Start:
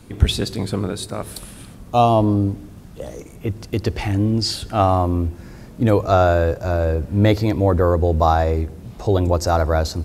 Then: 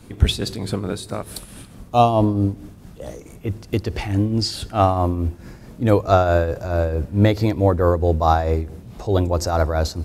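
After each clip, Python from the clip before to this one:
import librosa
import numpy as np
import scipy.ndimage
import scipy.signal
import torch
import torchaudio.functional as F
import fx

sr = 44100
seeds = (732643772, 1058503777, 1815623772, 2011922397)

y = fx.tremolo_shape(x, sr, shape='triangle', hz=4.6, depth_pct=60)
y = y * librosa.db_to_amplitude(1.5)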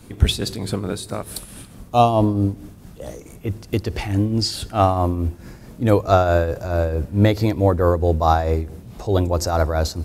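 y = fx.high_shelf(x, sr, hz=8200.0, db=5.0)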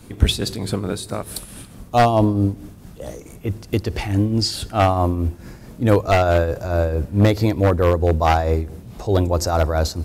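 y = np.minimum(x, 2.0 * 10.0 ** (-9.0 / 20.0) - x)
y = y * librosa.db_to_amplitude(1.0)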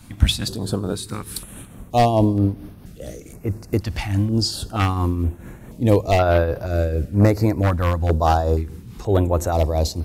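y = fx.filter_held_notch(x, sr, hz=2.1, low_hz=420.0, high_hz=7400.0)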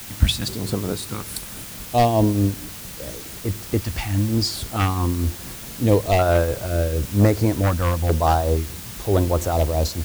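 y = fx.quant_dither(x, sr, seeds[0], bits=6, dither='triangular')
y = y * librosa.db_to_amplitude(-1.0)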